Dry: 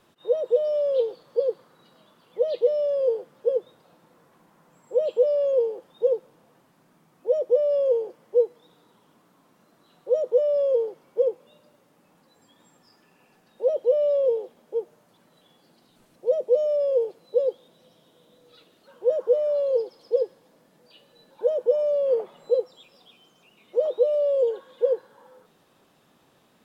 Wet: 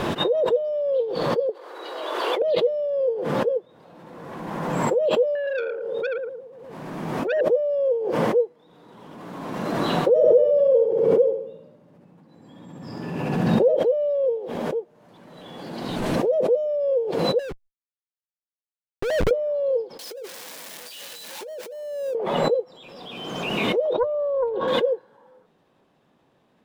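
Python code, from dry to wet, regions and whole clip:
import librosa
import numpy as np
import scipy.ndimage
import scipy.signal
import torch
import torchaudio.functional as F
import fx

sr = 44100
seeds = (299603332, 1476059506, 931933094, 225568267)

y = fx.chain(x, sr, fx.steep_highpass(hz=340.0, slope=48),
    fx.clip_hard(threshold_db=-13.5), at=(1.49, 2.42))
y = fx.chain(y, sr, fx.echo_feedback(ms=113, feedback_pct=45, wet_db=-6.5),
    fx.transformer_sat(knee_hz=1900.0), at=(5.35, 7.41))
y = fx.chain(y, sr, fx.peak_eq(hz=140.0, db=12.5, octaves=2.7),
    fx.echo_feedback(ms=67, feedback_pct=53, wet_db=-6.5), at=(10.09, 13.76))
y = fx.chain(y, sr, fx.highpass(hz=230.0, slope=12),
    fx.schmitt(flips_db=-40.5), at=(17.39, 19.31))
y = fx.chain(y, sr, fx.crossing_spikes(level_db=-20.0),
    fx.highpass(hz=140.0, slope=24),
    fx.over_compress(threshold_db=-31.0, ratio=-1.0), at=(19.99, 22.15))
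y = fx.chain(y, sr, fx.lowpass(hz=3200.0, slope=12),
    fx.peak_eq(hz=1900.0, db=-11.5, octaves=1.0),
    fx.doppler_dist(depth_ms=0.29), at=(23.93, 24.68))
y = fx.lowpass(y, sr, hz=1900.0, slope=6)
y = fx.peak_eq(y, sr, hz=1300.0, db=-4.5, octaves=0.22)
y = fx.pre_swell(y, sr, db_per_s=28.0)
y = y * 10.0 ** (-1.0 / 20.0)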